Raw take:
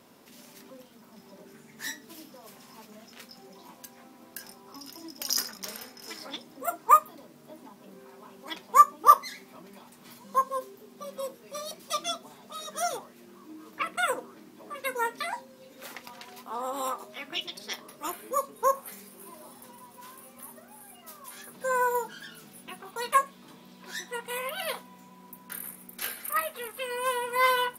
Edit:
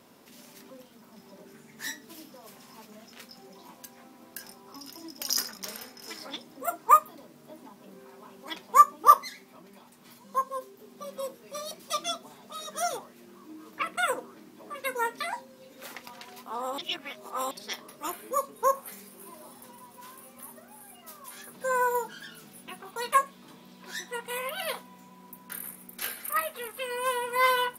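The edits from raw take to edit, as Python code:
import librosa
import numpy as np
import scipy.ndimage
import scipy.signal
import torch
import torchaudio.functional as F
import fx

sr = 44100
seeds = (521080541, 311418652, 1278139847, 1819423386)

y = fx.edit(x, sr, fx.clip_gain(start_s=9.29, length_s=1.5, db=-3.0),
    fx.reverse_span(start_s=16.78, length_s=0.73), tone=tone)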